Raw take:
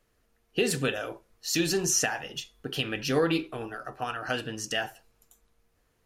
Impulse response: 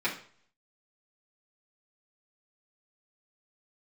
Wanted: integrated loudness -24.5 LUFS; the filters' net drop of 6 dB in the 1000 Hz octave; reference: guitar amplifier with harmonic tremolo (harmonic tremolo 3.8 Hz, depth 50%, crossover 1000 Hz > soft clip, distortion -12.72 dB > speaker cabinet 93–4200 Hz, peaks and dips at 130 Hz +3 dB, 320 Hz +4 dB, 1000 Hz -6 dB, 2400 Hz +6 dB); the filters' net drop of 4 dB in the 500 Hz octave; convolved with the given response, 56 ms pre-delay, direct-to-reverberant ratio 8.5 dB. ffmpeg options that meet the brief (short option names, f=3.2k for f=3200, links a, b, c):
-filter_complex "[0:a]equalizer=f=500:t=o:g=-5.5,equalizer=f=1k:t=o:g=-5,asplit=2[a][b];[1:a]atrim=start_sample=2205,adelay=56[c];[b][c]afir=irnorm=-1:irlink=0,volume=-18dB[d];[a][d]amix=inputs=2:normalize=0,acrossover=split=1000[e][f];[e]aeval=exprs='val(0)*(1-0.5/2+0.5/2*cos(2*PI*3.8*n/s))':c=same[g];[f]aeval=exprs='val(0)*(1-0.5/2-0.5/2*cos(2*PI*3.8*n/s))':c=same[h];[g][h]amix=inputs=2:normalize=0,asoftclip=threshold=-25.5dB,highpass=93,equalizer=f=130:t=q:w=4:g=3,equalizer=f=320:t=q:w=4:g=4,equalizer=f=1k:t=q:w=4:g=-6,equalizer=f=2.4k:t=q:w=4:g=6,lowpass=f=4.2k:w=0.5412,lowpass=f=4.2k:w=1.3066,volume=10.5dB"